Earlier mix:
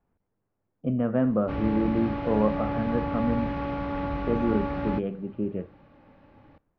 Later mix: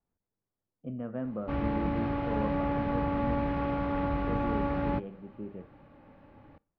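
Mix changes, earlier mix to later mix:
speech −11.5 dB
background: add high-shelf EQ 5,200 Hz −10.5 dB

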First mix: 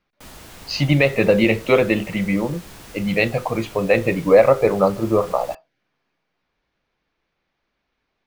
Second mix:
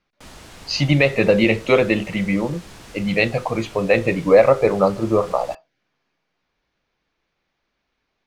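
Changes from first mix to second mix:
background: add high-frequency loss of the air 64 metres
master: add high-shelf EQ 6,500 Hz +8 dB

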